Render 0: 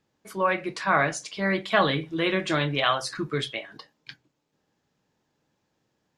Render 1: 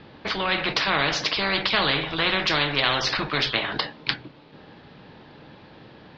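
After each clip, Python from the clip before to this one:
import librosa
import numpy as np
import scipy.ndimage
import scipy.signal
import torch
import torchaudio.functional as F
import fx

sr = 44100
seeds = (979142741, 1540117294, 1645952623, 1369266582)

y = scipy.signal.sosfilt(scipy.signal.butter(8, 4400.0, 'lowpass', fs=sr, output='sos'), x)
y = fx.spectral_comp(y, sr, ratio=4.0)
y = y * 10.0 ** (5.5 / 20.0)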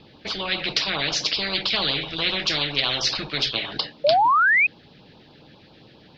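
y = fx.filter_lfo_notch(x, sr, shape='sine', hz=7.4, low_hz=920.0, high_hz=2000.0, q=0.97)
y = fx.high_shelf(y, sr, hz=3000.0, db=10.0)
y = fx.spec_paint(y, sr, seeds[0], shape='rise', start_s=4.04, length_s=0.63, low_hz=550.0, high_hz=2600.0, level_db=-14.0)
y = y * 10.0 ** (-3.0 / 20.0)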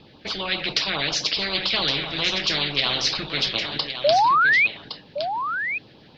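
y = x + 10.0 ** (-9.0 / 20.0) * np.pad(x, (int(1114 * sr / 1000.0), 0))[:len(x)]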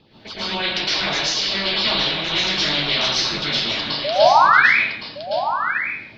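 y = fx.rev_plate(x, sr, seeds[1], rt60_s=0.66, hf_ratio=0.9, predelay_ms=100, drr_db=-9.5)
y = y * 10.0 ** (-6.0 / 20.0)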